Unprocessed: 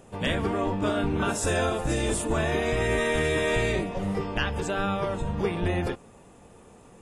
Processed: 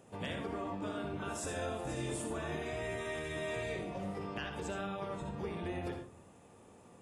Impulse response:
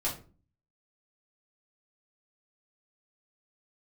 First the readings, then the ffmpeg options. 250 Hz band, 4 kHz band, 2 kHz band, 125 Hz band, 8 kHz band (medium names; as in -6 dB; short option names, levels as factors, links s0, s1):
-12.0 dB, -13.0 dB, -13.5 dB, -13.5 dB, -12.0 dB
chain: -filter_complex "[0:a]highpass=83,acompressor=threshold=0.0316:ratio=4,asplit=2[s0][s1];[1:a]atrim=start_sample=2205,adelay=61[s2];[s1][s2]afir=irnorm=-1:irlink=0,volume=0.316[s3];[s0][s3]amix=inputs=2:normalize=0,volume=0.398"